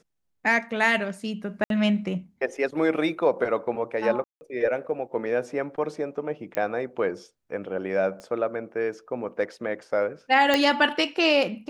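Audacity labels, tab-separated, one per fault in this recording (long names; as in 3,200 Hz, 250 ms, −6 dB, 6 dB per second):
1.640000	1.700000	drop-out 62 ms
4.240000	4.410000	drop-out 170 ms
6.550000	6.550000	click −14 dBFS
8.200000	8.200000	click −27 dBFS
10.540000	10.540000	click −7 dBFS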